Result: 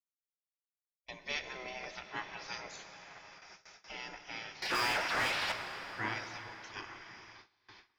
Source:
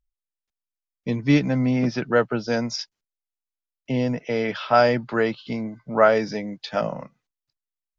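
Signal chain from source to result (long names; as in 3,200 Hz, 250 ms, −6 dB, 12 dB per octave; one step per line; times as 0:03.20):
feedback delay with all-pass diffusion 966 ms, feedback 54%, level −13 dB
gate on every frequency bin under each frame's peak −20 dB weak
0:04.62–0:05.52: mid-hump overdrive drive 33 dB, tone 2,900 Hz, clips at −17.5 dBFS
dense smooth reverb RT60 4.5 s, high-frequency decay 0.65×, DRR 7 dB
noise gate with hold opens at −37 dBFS
level −6.5 dB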